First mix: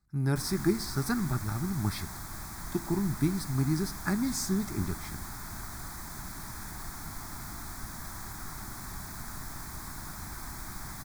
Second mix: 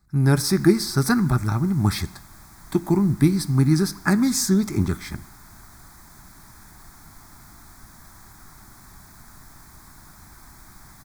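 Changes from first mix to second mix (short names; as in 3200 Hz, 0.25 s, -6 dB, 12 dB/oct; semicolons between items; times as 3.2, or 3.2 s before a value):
speech +10.5 dB; background -6.0 dB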